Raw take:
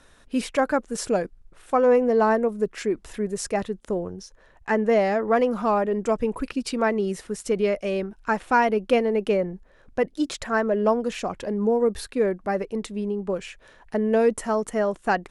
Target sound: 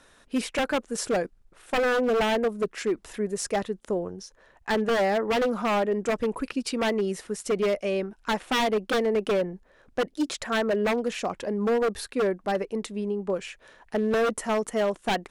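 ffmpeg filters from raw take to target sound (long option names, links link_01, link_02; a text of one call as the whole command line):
ffmpeg -i in.wav -af "lowshelf=frequency=130:gain=-9,aeval=exprs='0.119*(abs(mod(val(0)/0.119+3,4)-2)-1)':channel_layout=same" out.wav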